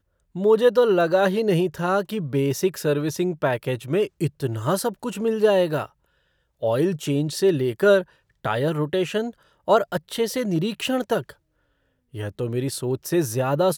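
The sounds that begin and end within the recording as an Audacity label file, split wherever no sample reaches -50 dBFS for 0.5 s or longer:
6.610000	11.340000	sound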